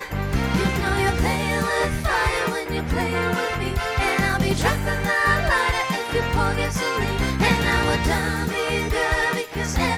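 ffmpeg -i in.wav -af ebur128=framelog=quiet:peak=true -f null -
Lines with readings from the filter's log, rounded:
Integrated loudness:
  I:         -21.7 LUFS
  Threshold: -31.7 LUFS
Loudness range:
  LRA:         1.5 LU
  Threshold: -41.6 LUFS
  LRA low:   -22.4 LUFS
  LRA high:  -20.9 LUFS
True peak:
  Peak:       -5.7 dBFS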